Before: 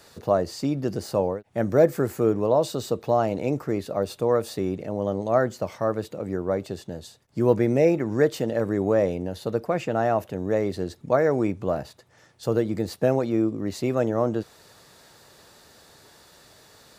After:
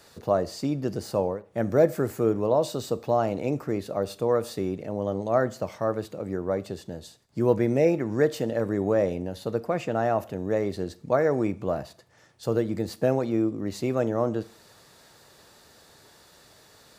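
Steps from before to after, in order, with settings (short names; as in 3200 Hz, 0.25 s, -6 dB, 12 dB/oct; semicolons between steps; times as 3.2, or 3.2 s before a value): Schroeder reverb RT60 0.48 s, combs from 27 ms, DRR 18 dB; gain -2 dB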